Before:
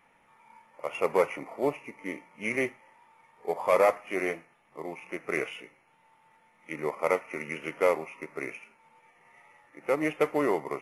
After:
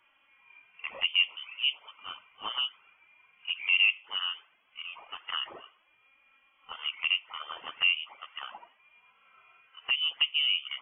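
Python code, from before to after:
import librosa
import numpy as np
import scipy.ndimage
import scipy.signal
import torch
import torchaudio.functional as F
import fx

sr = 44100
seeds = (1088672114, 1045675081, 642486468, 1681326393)

y = fx.env_lowpass_down(x, sr, base_hz=1100.0, full_db=-24.5)
y = fx.env_flanger(y, sr, rest_ms=3.8, full_db=-24.5)
y = fx.freq_invert(y, sr, carrier_hz=3300)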